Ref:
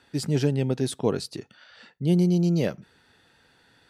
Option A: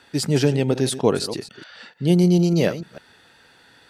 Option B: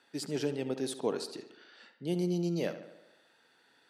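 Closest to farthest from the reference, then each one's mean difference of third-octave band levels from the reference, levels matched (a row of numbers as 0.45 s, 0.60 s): A, B; 4.0 dB, 5.5 dB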